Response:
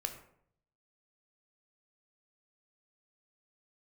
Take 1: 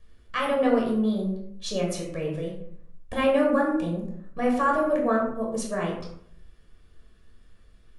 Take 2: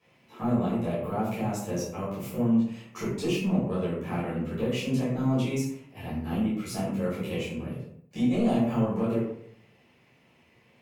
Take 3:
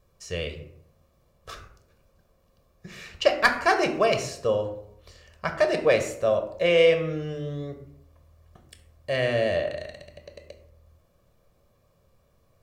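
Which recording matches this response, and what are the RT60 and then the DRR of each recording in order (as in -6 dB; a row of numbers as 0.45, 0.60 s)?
3; 0.65, 0.65, 0.65 s; -2.5, -11.5, 5.5 dB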